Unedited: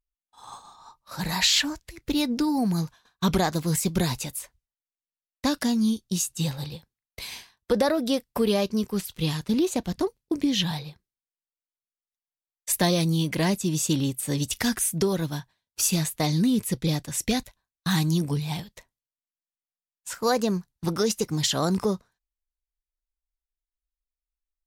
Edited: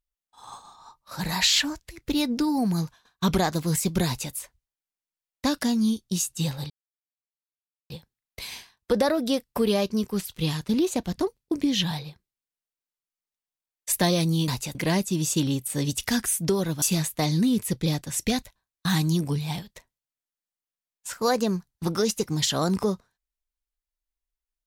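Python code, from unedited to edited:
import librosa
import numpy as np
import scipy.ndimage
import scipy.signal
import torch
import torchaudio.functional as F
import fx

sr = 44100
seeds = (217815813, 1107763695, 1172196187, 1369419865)

y = fx.edit(x, sr, fx.duplicate(start_s=4.06, length_s=0.27, to_s=13.28),
    fx.insert_silence(at_s=6.7, length_s=1.2),
    fx.cut(start_s=15.35, length_s=0.48), tone=tone)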